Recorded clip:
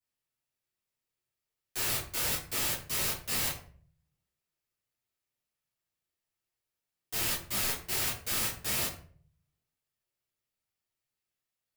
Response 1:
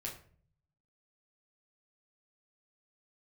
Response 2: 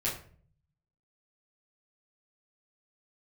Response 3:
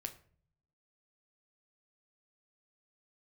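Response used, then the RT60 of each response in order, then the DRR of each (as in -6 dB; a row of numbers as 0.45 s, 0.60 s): 2; 0.50 s, 0.45 s, 0.50 s; -3.5 dB, -9.0 dB, 6.0 dB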